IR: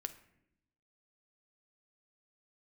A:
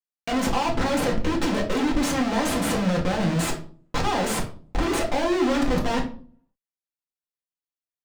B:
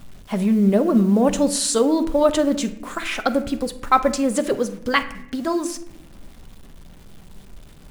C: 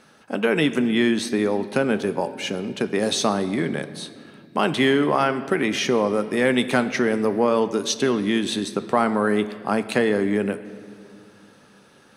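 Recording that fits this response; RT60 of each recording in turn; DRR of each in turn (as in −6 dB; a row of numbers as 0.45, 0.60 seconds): B; 0.45, 0.80, 2.3 seconds; −1.0, 9.0, 10.5 decibels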